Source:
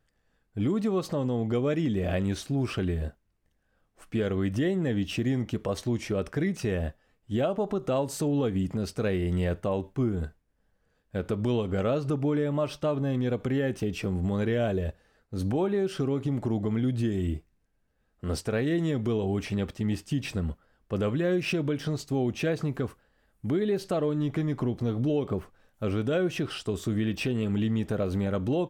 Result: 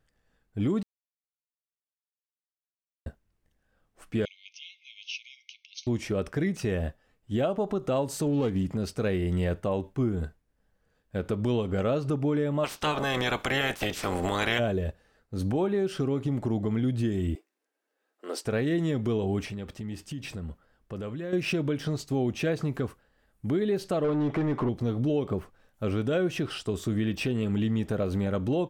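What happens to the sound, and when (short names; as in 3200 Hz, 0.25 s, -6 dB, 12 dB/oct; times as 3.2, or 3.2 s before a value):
0.83–3.06 mute
4.25–5.87 brick-wall FIR band-pass 2100–6500 Hz
8.26–8.67 running maximum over 5 samples
12.63–14.58 spectral limiter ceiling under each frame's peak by 26 dB
17.35–18.45 steep high-pass 300 Hz
19.45–21.33 compressor 2.5:1, threshold -36 dBFS
22.1–22.8 mismatched tape noise reduction encoder only
24.04–24.69 overdrive pedal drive 21 dB, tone 1100 Hz, clips at -19 dBFS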